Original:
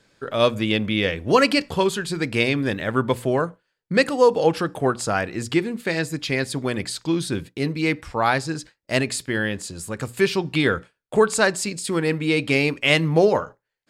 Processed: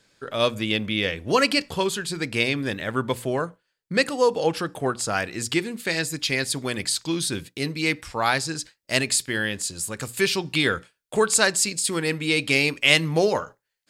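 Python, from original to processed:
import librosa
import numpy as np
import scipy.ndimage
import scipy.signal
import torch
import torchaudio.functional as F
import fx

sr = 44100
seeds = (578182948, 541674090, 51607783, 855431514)

y = fx.high_shelf(x, sr, hz=2400.0, db=fx.steps((0.0, 7.0), (5.12, 12.0)))
y = F.gain(torch.from_numpy(y), -4.5).numpy()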